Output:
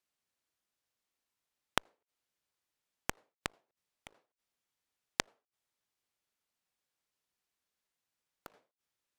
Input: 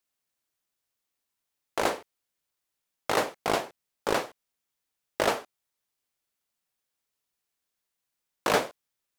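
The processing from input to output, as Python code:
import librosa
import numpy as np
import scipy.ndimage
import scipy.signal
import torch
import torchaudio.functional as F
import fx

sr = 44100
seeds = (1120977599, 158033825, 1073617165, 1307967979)

y = fx.gate_flip(x, sr, shuts_db=-30.0, range_db=-42)
y = fx.high_shelf(y, sr, hz=9400.0, db=-8.5)
y = fx.cheby_harmonics(y, sr, harmonics=(3,), levels_db=(-8,), full_scale_db=-16.0)
y = y * 10.0 ** (12.5 / 20.0)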